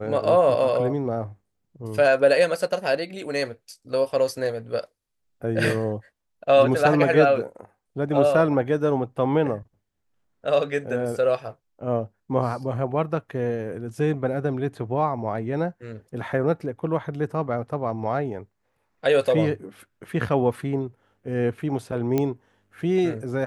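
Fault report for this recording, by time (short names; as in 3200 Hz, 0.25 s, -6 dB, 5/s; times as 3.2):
22.18 pop -11 dBFS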